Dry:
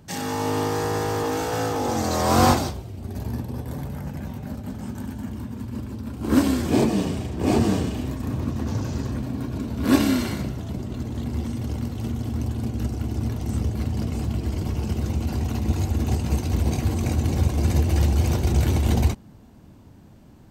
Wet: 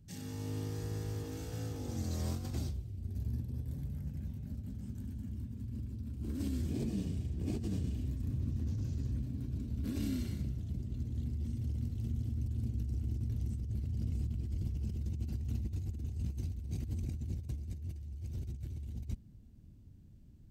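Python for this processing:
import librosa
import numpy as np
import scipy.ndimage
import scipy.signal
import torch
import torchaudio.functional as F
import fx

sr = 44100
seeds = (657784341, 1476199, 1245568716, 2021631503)

y = fx.tone_stack(x, sr, knobs='10-0-1')
y = fx.over_compress(y, sr, threshold_db=-37.0, ratio=-1.0)
y = y * 10.0 ** (1.0 / 20.0)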